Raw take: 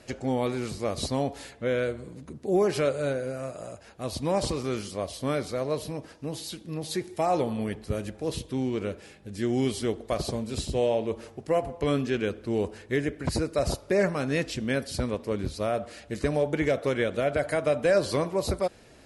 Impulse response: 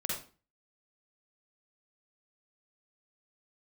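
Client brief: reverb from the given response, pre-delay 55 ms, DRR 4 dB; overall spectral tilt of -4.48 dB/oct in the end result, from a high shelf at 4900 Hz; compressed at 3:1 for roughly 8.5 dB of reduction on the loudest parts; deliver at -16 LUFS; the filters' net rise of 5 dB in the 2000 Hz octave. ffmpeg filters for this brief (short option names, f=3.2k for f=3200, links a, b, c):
-filter_complex "[0:a]equalizer=f=2k:t=o:g=5,highshelf=f=4.9k:g=7.5,acompressor=threshold=-30dB:ratio=3,asplit=2[a][b];[1:a]atrim=start_sample=2205,adelay=55[c];[b][c]afir=irnorm=-1:irlink=0,volume=-7.5dB[d];[a][d]amix=inputs=2:normalize=0,volume=16dB"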